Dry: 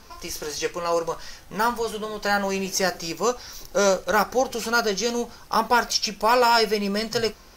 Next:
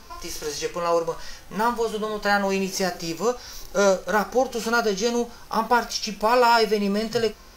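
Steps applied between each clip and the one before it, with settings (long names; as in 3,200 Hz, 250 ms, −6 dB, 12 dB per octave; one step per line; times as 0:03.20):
harmonic and percussive parts rebalanced percussive −10 dB
in parallel at −3 dB: downward compressor, threshold −29 dBFS, peak gain reduction 13.5 dB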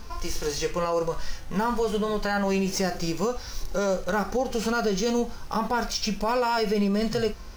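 running median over 3 samples
low-shelf EQ 180 Hz +10 dB
brickwall limiter −17 dBFS, peak gain reduction 9.5 dB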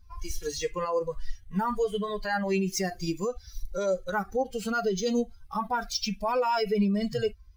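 spectral dynamics exaggerated over time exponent 2
level +1.5 dB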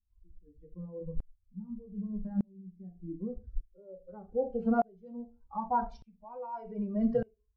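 low-pass filter sweep 210 Hz → 860 Hz, 0:02.71–0:05.13
on a send at −8.5 dB: convolution reverb RT60 0.25 s, pre-delay 3 ms
on the sum: tremolo with a ramp in dB swelling 0.83 Hz, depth 34 dB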